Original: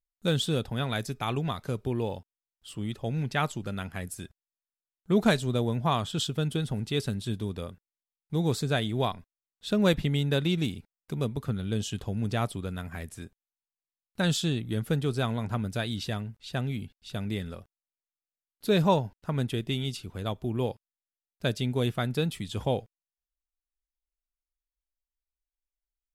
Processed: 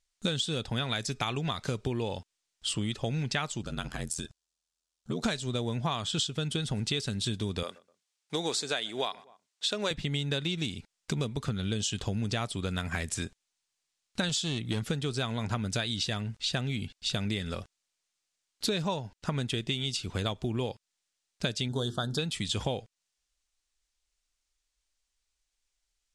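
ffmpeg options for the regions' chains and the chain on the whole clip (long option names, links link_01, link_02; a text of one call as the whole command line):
ffmpeg -i in.wav -filter_complex "[0:a]asettb=1/sr,asplit=3[link_01][link_02][link_03];[link_01]atrim=end=3.624[link_04];[link_02]atrim=start=3.62:end=5.24,asetpts=PTS-STARTPTS,afade=type=in:duration=0.004:curve=qsin,afade=type=out:start_time=1.616:duration=0.004:curve=qsin,equalizer=frequency=2100:width_type=o:width=0.72:gain=-7.5,acompressor=threshold=-42dB:ratio=2:attack=3.2:release=140:knee=1:detection=peak,aeval=exprs='val(0)*sin(2*PI*41*n/s)':channel_layout=same[link_05];[link_03]atrim=start=5.236[link_06];[link_04][link_05]acrossfade=duration=0.004:curve1=hsin:curve2=qsin[link_07];[link_07][link_06]acrossfade=duration=0.004:curve1=qsin:curve2=hsin,asettb=1/sr,asplit=3[link_08][link_09][link_10];[link_08]atrim=end=7.634[link_11];[link_09]atrim=start=7.63:end=9.91,asetpts=PTS-STARTPTS,afade=type=in:duration=0.004:curve=qsin,afade=type=out:start_time=2.276:duration=0.004:curve=qsin,highpass=400,asplit=2[link_12][link_13];[link_13]adelay=124,lowpass=frequency=1500:poles=1,volume=-24dB,asplit=2[link_14][link_15];[link_15]adelay=124,lowpass=frequency=1500:poles=1,volume=0.35[link_16];[link_12][link_14][link_16]amix=inputs=3:normalize=0,atrim=end_sample=100548[link_17];[link_10]atrim=start=9.906[link_18];[link_11][link_17]acrossfade=duration=0.004:curve1=hsin:curve2=qsin[link_19];[link_19][link_18]acrossfade=duration=0.004:curve1=qsin:curve2=hsin,asettb=1/sr,asplit=3[link_20][link_21][link_22];[link_20]atrim=end=14.294[link_23];[link_21]atrim=start=14.29:end=14.83,asetpts=PTS-STARTPTS,afade=type=in:duration=0.004:curve=qsin,afade=type=out:start_time=0.536:duration=0.004:curve=qsin,highpass=51,asoftclip=type=hard:threshold=-23.5dB[link_24];[link_22]atrim=start=14.826[link_25];[link_23][link_24]acrossfade=duration=0.004:curve1=hsin:curve2=qsin[link_26];[link_26][link_25]acrossfade=duration=0.004:curve1=qsin:curve2=hsin,asettb=1/sr,asplit=3[link_27][link_28][link_29];[link_27]atrim=end=21.684[link_30];[link_28]atrim=start=21.68:end=22.19,asetpts=PTS-STARTPTS,afade=type=in:duration=0.004:curve=qsin,afade=type=out:start_time=0.506:duration=0.004:curve=qsin,asuperstop=centerf=2300:order=8:qfactor=1.5,bandreject=frequency=50:width_type=h:width=6,bandreject=frequency=100:width_type=h:width=6,bandreject=frequency=150:width_type=h:width=6,bandreject=frequency=200:width_type=h:width=6,bandreject=frequency=250:width_type=h:width=6,bandreject=frequency=300:width_type=h:width=6,bandreject=frequency=350:width_type=h:width=6,bandreject=frequency=400:width_type=h:width=6,bandreject=frequency=450:width_type=h:width=6[link_31];[link_29]atrim=start=22.186[link_32];[link_30][link_31]acrossfade=duration=0.004:curve1=hsin:curve2=qsin[link_33];[link_33][link_32]acrossfade=duration=0.004:curve1=qsin:curve2=hsin,lowpass=frequency=8200:width=0.5412,lowpass=frequency=8200:width=1.3066,highshelf=frequency=2100:gain=11.5,acompressor=threshold=-36dB:ratio=10,volume=8dB" out.wav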